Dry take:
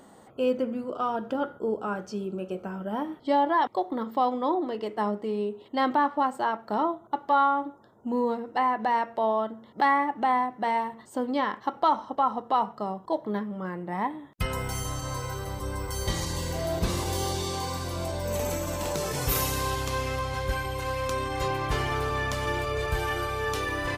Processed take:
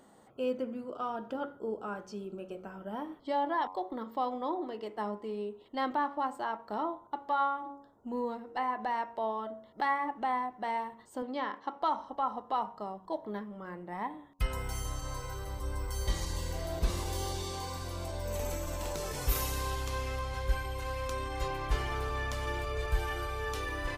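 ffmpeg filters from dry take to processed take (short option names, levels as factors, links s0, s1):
-filter_complex "[0:a]asettb=1/sr,asplit=3[s0][s1][s2];[s0]atrim=end=11.224[s3];[s1]atrim=start=11.22:end=11.82,asetpts=PTS-STARTPTS,afade=t=in:d=0.004:c=qsin,afade=t=out:st=0.596:d=0.004:c=qsin,highpass=170,lowpass=6400[s4];[s2]atrim=start=11.816[s5];[s3][s4]acrossfade=d=0.004:c1=hsin:c2=qsin[s6];[s6][s5]acrossfade=d=0.004:c1=qsin:c2=hsin,bandreject=f=93.49:t=h:w=4,bandreject=f=186.98:t=h:w=4,bandreject=f=280.47:t=h:w=4,bandreject=f=373.96:t=h:w=4,bandreject=f=467.45:t=h:w=4,bandreject=f=560.94:t=h:w=4,bandreject=f=654.43:t=h:w=4,bandreject=f=747.92:t=h:w=4,bandreject=f=841.41:t=h:w=4,bandreject=f=934.9:t=h:w=4,bandreject=f=1028.39:t=h:w=4,bandreject=f=1121.88:t=h:w=4,bandreject=f=1215.37:t=h:w=4,asubboost=boost=5.5:cutoff=53,volume=0.447"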